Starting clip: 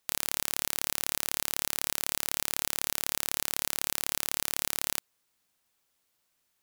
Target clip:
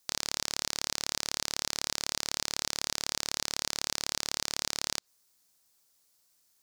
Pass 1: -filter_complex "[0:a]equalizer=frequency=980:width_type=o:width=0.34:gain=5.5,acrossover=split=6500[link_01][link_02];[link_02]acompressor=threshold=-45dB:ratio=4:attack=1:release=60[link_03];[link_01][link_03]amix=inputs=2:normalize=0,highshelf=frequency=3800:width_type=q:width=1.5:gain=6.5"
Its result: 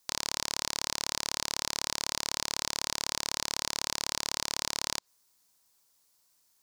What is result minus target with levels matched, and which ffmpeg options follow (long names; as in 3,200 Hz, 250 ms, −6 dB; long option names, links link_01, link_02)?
1,000 Hz band +2.5 dB
-filter_complex "[0:a]acrossover=split=6500[link_01][link_02];[link_02]acompressor=threshold=-45dB:ratio=4:attack=1:release=60[link_03];[link_01][link_03]amix=inputs=2:normalize=0,highshelf=frequency=3800:width_type=q:width=1.5:gain=6.5"